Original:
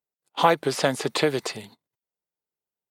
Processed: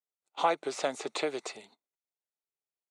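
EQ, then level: speaker cabinet 420–7900 Hz, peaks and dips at 500 Hz -4 dB, 990 Hz -5 dB, 1700 Hz -9 dB, 3100 Hz -7 dB, 4900 Hz -9 dB; -4.5 dB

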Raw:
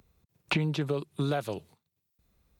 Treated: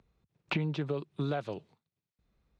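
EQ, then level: air absorption 130 m; bell 82 Hz -12 dB 0.25 oct; -3.0 dB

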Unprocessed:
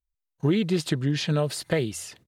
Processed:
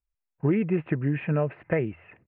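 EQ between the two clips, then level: Chebyshev low-pass 2600 Hz, order 6; air absorption 79 m; 0.0 dB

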